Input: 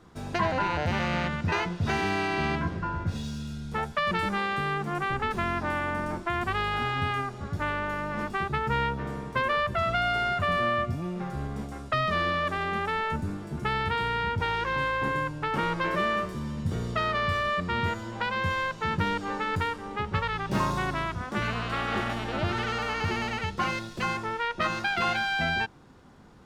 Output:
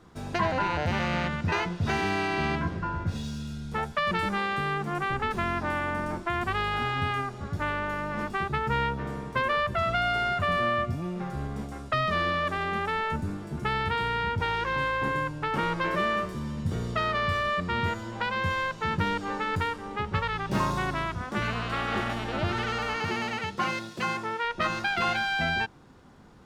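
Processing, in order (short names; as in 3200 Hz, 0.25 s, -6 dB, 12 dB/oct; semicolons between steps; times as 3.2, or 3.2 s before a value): 22.96–24.45 HPF 130 Hz 12 dB/oct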